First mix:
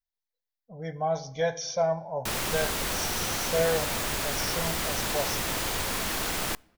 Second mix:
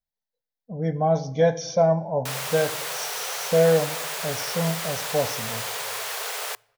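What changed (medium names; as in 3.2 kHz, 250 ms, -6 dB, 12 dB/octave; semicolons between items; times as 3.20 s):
speech: add peaking EQ 240 Hz +14 dB 2.6 oct; background: add brick-wall FIR high-pass 390 Hz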